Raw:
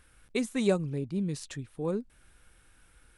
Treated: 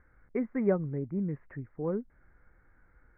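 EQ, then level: Chebyshev low-pass 2.1 kHz, order 6; distance through air 220 m; 0.0 dB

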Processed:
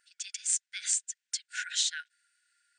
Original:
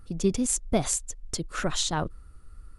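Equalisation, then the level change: brick-wall FIR band-pass 1.4–9.2 kHz; 0.0 dB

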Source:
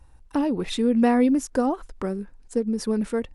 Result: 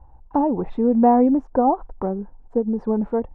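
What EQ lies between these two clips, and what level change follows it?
resonant low-pass 840 Hz, resonance Q 3.7; bass shelf 180 Hz +4.5 dB; 0.0 dB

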